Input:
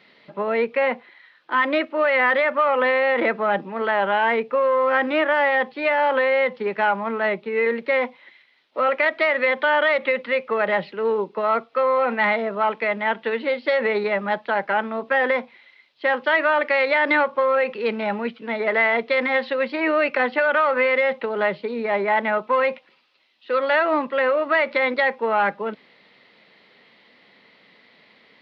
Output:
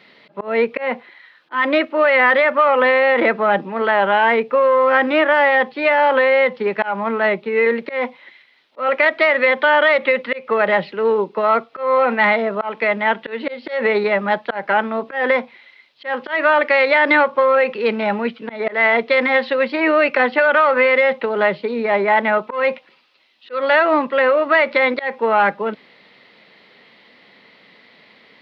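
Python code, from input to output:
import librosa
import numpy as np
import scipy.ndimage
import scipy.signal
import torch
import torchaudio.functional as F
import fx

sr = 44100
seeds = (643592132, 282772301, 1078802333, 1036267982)

y = fx.auto_swell(x, sr, attack_ms=171.0)
y = y * 10.0 ** (5.0 / 20.0)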